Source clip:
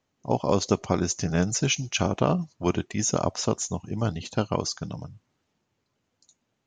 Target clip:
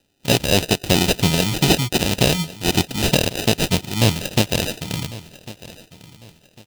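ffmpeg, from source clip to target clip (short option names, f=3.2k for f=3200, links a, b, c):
-filter_complex "[0:a]acrossover=split=1100[a][b];[a]aeval=exprs='val(0)*(1-0.7/2+0.7/2*cos(2*PI*3.2*n/s))':c=same[c];[b]aeval=exprs='val(0)*(1-0.7/2-0.7/2*cos(2*PI*3.2*n/s))':c=same[d];[c][d]amix=inputs=2:normalize=0,asplit=2[e][f];[f]alimiter=limit=-18dB:level=0:latency=1:release=31,volume=0.5dB[g];[e][g]amix=inputs=2:normalize=0,acrusher=samples=40:mix=1:aa=0.000001,highshelf=f=2.1k:t=q:w=1.5:g=9.5,asoftclip=type=hard:threshold=-11dB,aecho=1:1:1100|2200|3300:0.119|0.0368|0.0114,volume=5dB"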